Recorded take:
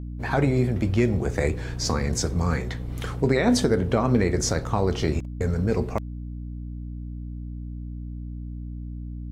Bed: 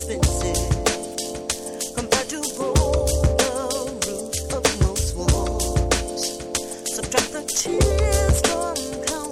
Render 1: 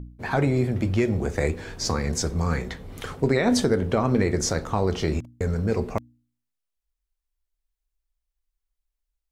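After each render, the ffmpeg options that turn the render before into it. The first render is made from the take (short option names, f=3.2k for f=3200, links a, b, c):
-af "bandreject=f=60:t=h:w=4,bandreject=f=120:t=h:w=4,bandreject=f=180:t=h:w=4,bandreject=f=240:t=h:w=4,bandreject=f=300:t=h:w=4"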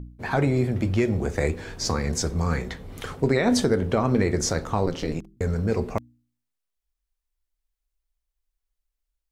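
-filter_complex "[0:a]asettb=1/sr,asplit=3[a][b][c];[a]atrim=end=4.864[d];[b]atrim=start=4.86:end=5.37,asetpts=PTS-STARTPTS,afade=t=in:d=0.004:c=qsin,afade=t=out:st=0.506:d=0.004:c=qsin,aeval=exprs='val(0)*sin(2*PI*82*n/s)':c=same[e];[c]atrim=start=5.366[f];[d][e]acrossfade=d=0.004:c1=hsin:c2=qsin[g];[g][f]acrossfade=d=0.004:c1=qsin:c2=hsin"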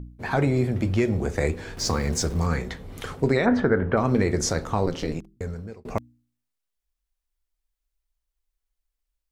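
-filter_complex "[0:a]asettb=1/sr,asplit=3[a][b][c];[a]atrim=end=1.774[d];[b]atrim=start=1.77:end=2.47,asetpts=PTS-STARTPTS,afade=t=in:d=0.004:c=qsin,afade=t=out:st=0.696:d=0.004:c=qsin,aeval=exprs='val(0)+0.5*0.0133*sgn(val(0))':c=same[e];[c]atrim=start=2.466[f];[d][e]acrossfade=d=0.004:c1=hsin:c2=qsin[g];[g][f]acrossfade=d=0.004:c1=qsin:c2=hsin,asplit=3[h][i][j];[h]afade=t=out:st=3.45:d=0.02[k];[i]lowpass=f=1.6k:t=q:w=2.4,afade=t=in:st=3.45:d=0.02,afade=t=out:st=3.96:d=0.02[l];[j]afade=t=in:st=3.96:d=0.02[m];[k][l][m]amix=inputs=3:normalize=0,asplit=2[n][o];[n]atrim=end=5.85,asetpts=PTS-STARTPTS,afade=t=out:st=5.05:d=0.8[p];[o]atrim=start=5.85,asetpts=PTS-STARTPTS,afade=t=in:d=0.004:c=hsin[q];[p][q]concat=n=2:v=0:a=1"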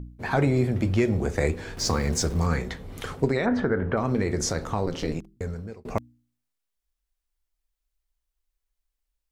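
-filter_complex "[0:a]asettb=1/sr,asplit=3[a][b][c];[a]atrim=end=3.254[d];[b]atrim=start=3.25:end=5.04,asetpts=PTS-STARTPTS,afade=t=in:d=0.004:c=qsin,afade=t=out:st=1.786:d=0.004:c=qsin,acompressor=threshold=-25dB:ratio=1.5:attack=3.2:release=140:knee=1:detection=peak[e];[c]atrim=start=5.036[f];[d][e]acrossfade=d=0.004:c1=hsin:c2=qsin[g];[g][f]acrossfade=d=0.004:c1=qsin:c2=hsin"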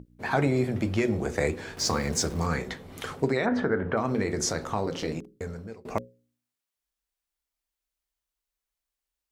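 -af "highpass=f=160:p=1,bandreject=f=60:t=h:w=6,bandreject=f=120:t=h:w=6,bandreject=f=180:t=h:w=6,bandreject=f=240:t=h:w=6,bandreject=f=300:t=h:w=6,bandreject=f=360:t=h:w=6,bandreject=f=420:t=h:w=6,bandreject=f=480:t=h:w=6,bandreject=f=540:t=h:w=6"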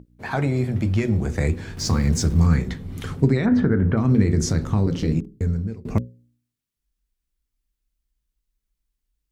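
-af "asubboost=boost=9.5:cutoff=220"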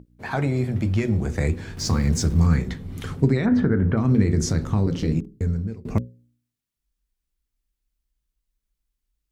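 -af "volume=-1dB"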